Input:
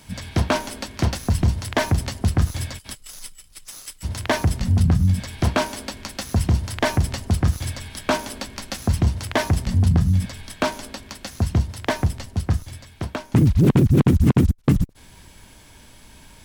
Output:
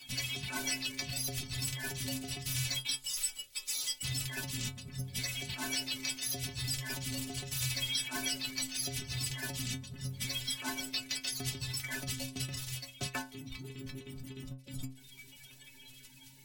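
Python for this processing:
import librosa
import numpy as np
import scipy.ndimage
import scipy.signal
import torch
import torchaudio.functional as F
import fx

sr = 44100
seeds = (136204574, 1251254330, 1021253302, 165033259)

p1 = fx.spec_quant(x, sr, step_db=30)
p2 = fx.high_shelf_res(p1, sr, hz=1700.0, db=12.0, q=1.5)
p3 = fx.fuzz(p2, sr, gain_db=38.0, gate_db=-33.0)
p4 = p2 + (p3 * librosa.db_to_amplitude(-12.0))
p5 = fx.over_compress(p4, sr, threshold_db=-19.0, ratio=-0.5)
p6 = fx.stiff_resonator(p5, sr, f0_hz=130.0, decay_s=0.35, stiffness=0.008)
y = p6 * librosa.db_to_amplitude(-5.5)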